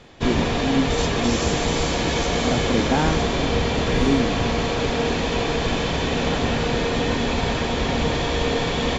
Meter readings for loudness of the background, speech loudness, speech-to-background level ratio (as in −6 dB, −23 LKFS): −22.0 LKFS, −26.5 LKFS, −4.5 dB